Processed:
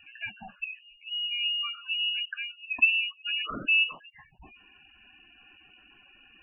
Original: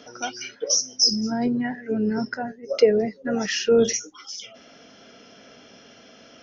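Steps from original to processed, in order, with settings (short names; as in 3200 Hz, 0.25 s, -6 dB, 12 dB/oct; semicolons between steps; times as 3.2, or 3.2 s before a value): inverted band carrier 3100 Hz; spectral gate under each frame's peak -15 dB strong; gain -6 dB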